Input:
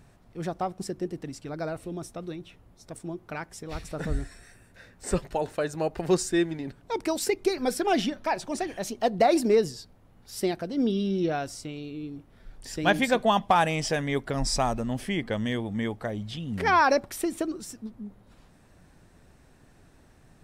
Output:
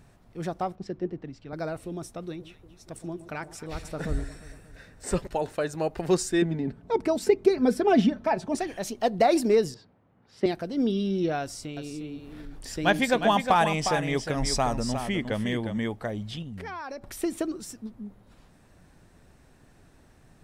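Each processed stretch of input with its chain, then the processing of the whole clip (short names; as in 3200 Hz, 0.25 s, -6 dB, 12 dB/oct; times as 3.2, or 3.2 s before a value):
0.75–1.53 upward compressor, threshold -40 dBFS + air absorption 210 m + three-band expander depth 70%
2.28–5.27 hard clip -17 dBFS + echo with dull and thin repeats by turns 0.117 s, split 850 Hz, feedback 74%, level -13 dB
6.42–8.55 HPF 84 Hz + tilt -3 dB/oct + comb 4.6 ms, depth 42%
9.74–10.46 BPF 120–2400 Hz + three-band expander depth 40%
11.41–15.78 upward compressor, threshold -35 dBFS + echo 0.358 s -8 dB
16.42–17.22 low shelf 89 Hz +10 dB + compressor 5:1, threshold -36 dBFS
whole clip: dry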